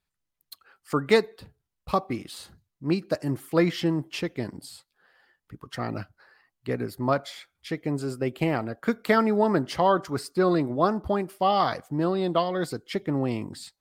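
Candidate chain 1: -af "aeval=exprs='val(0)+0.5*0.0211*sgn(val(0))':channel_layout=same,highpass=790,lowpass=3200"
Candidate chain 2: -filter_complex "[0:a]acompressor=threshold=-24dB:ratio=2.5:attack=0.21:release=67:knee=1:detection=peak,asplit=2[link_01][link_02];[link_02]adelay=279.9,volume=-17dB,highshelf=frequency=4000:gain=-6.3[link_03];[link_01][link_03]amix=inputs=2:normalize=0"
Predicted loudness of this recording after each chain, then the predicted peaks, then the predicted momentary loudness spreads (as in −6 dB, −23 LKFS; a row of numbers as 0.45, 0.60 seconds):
−32.5, −31.5 LKFS; −11.5, −16.5 dBFS; 16, 15 LU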